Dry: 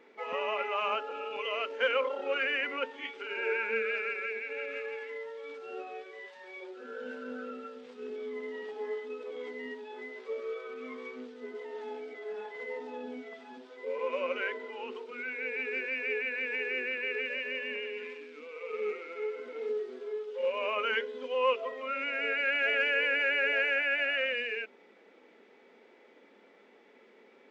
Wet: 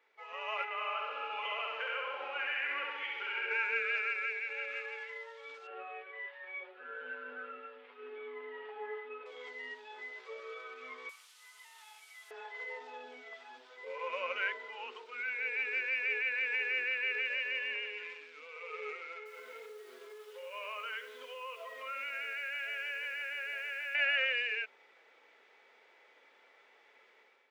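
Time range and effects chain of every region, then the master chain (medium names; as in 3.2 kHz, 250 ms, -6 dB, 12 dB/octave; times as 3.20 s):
0.64–3.51 s: low-pass 3.6 kHz + compression, threshold -34 dBFS + flutter echo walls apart 11.4 m, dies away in 1.4 s
5.67–9.26 s: low-pass 2.8 kHz 24 dB/octave + comb 7.1 ms, depth 66%
11.09–12.31 s: one-bit delta coder 64 kbps, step -51 dBFS + high-pass 1.1 kHz 24 dB/octave + peaking EQ 1.6 kHz -8.5 dB 0.73 oct
19.17–23.95 s: band-stop 780 Hz, Q 8.2 + compression, threshold -37 dBFS + bit-crushed delay 85 ms, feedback 55%, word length 9-bit, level -11 dB
whole clip: level rider gain up to 10 dB; high-pass 850 Hz 12 dB/octave; trim -9 dB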